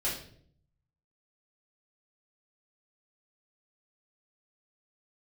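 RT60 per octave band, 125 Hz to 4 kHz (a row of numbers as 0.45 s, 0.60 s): 1.1 s, 0.85 s, 0.70 s, 0.50 s, 0.50 s, 0.45 s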